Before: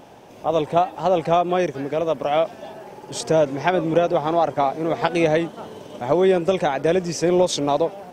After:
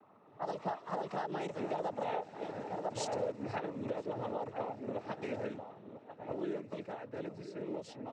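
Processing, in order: Doppler pass-by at 2.06 s, 42 m/s, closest 15 m; band-stop 3.3 kHz, Q 7.2; echo from a far wall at 170 m, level -12 dB; compression 10:1, threshold -33 dBFS, peak gain reduction 18 dB; level-controlled noise filter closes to 1.5 kHz, open at -32.5 dBFS; noise-vocoded speech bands 12

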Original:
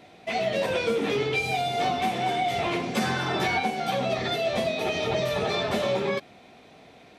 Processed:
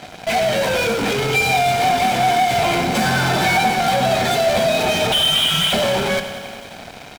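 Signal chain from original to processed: 5.12–5.73 s: frequency inversion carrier 3.7 kHz; in parallel at -9 dB: fuzz box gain 43 dB, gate -50 dBFS; on the sum: comb 1.3 ms, depth 37%; bit-crushed delay 92 ms, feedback 80%, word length 7-bit, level -12 dB

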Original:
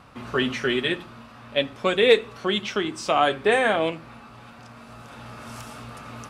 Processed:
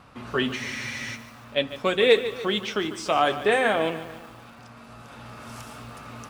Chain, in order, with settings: spectral freeze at 0.59 s, 0.56 s; bit-crushed delay 147 ms, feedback 55%, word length 7-bit, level -13 dB; trim -1.5 dB

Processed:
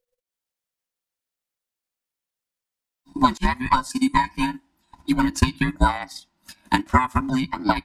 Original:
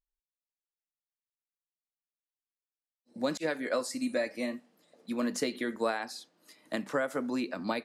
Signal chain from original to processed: every band turned upside down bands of 500 Hz; transient shaper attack +8 dB, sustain -8 dB; trim +8 dB

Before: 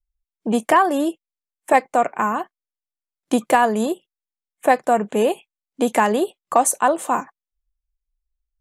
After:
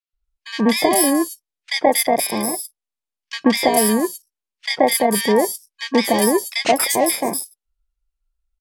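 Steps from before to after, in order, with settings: bit-reversed sample order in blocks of 32 samples; Bessel low-pass 9.9 kHz, order 2; three bands offset in time mids, lows, highs 130/240 ms, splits 1.7/5.6 kHz; trim +4.5 dB

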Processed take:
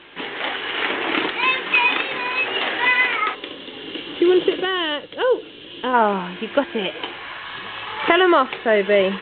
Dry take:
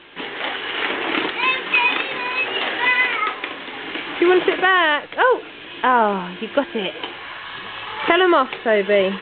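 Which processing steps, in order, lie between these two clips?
time-frequency box 3.35–5.94 s, 600–2700 Hz -10 dB; Chebyshev shaper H 2 -43 dB, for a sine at -1.5 dBFS

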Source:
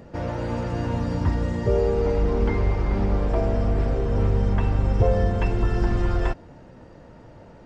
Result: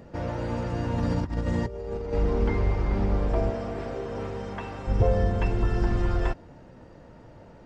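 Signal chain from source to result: 0.98–2.13 s: compressor with a negative ratio -25 dBFS, ratio -0.5; 3.49–4.87 s: high-pass 280 Hz -> 600 Hz 6 dB/octave; trim -2.5 dB

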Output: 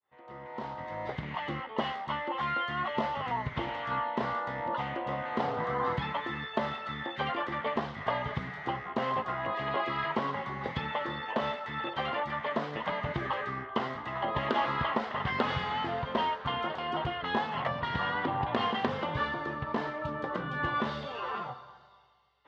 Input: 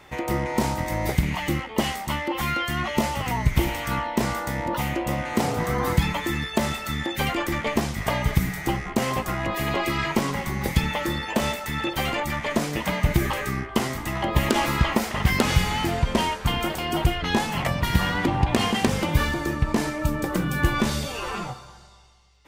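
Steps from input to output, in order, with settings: fade-in on the opening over 1.48 s; cabinet simulation 180–3300 Hz, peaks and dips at 190 Hz -9 dB, 320 Hz -10 dB, 1.1 kHz +4 dB, 2.4 kHz -10 dB; trim -4.5 dB

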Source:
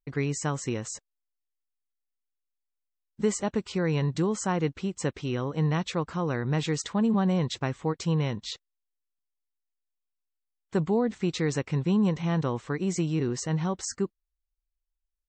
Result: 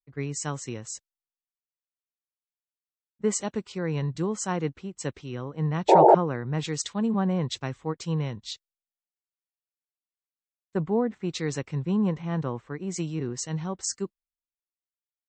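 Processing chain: painted sound noise, 5.88–6.15 s, 320–950 Hz -19 dBFS; three bands expanded up and down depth 100%; trim -2 dB

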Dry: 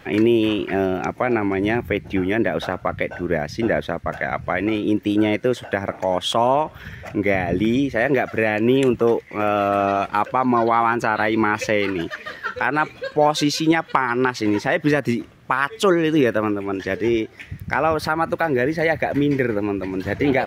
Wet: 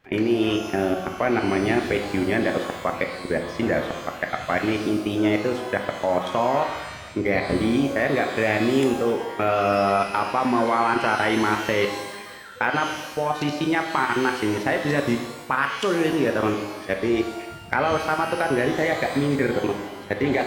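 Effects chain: level held to a coarse grid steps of 22 dB; pitch-shifted reverb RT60 1.1 s, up +12 st, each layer -8 dB, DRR 4 dB

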